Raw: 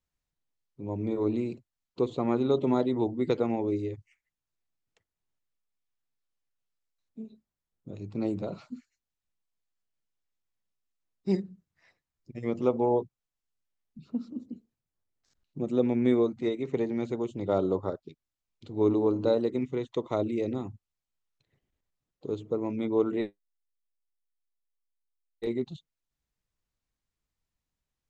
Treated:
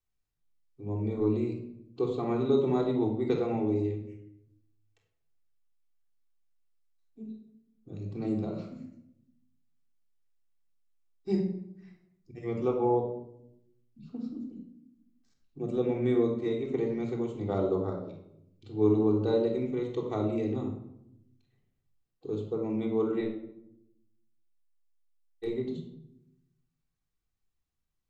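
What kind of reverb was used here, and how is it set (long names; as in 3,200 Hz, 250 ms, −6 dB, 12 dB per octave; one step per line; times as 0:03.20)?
rectangular room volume 1,900 cubic metres, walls furnished, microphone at 3.6 metres
level −6 dB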